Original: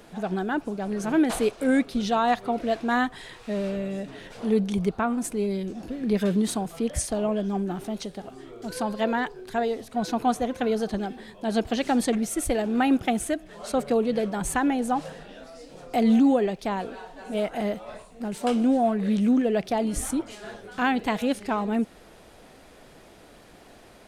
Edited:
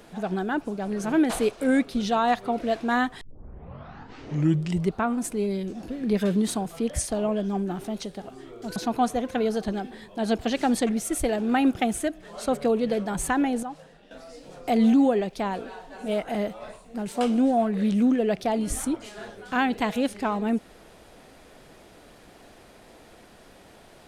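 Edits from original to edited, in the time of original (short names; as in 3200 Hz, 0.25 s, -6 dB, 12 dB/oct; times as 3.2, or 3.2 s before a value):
3.21 tape start 1.74 s
8.76–10.02 cut
14.89–15.37 gain -10.5 dB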